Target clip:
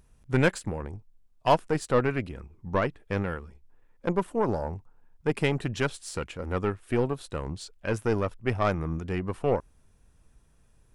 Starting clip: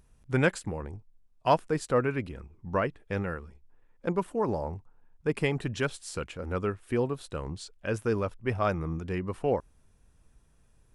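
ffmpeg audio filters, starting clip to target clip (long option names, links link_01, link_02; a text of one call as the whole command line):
ffmpeg -i in.wav -af "aeval=exprs='0.355*(cos(1*acos(clip(val(0)/0.355,-1,1)))-cos(1*PI/2))+0.02*(cos(8*acos(clip(val(0)/0.355,-1,1)))-cos(8*PI/2))':channel_layout=same,volume=1.5dB" out.wav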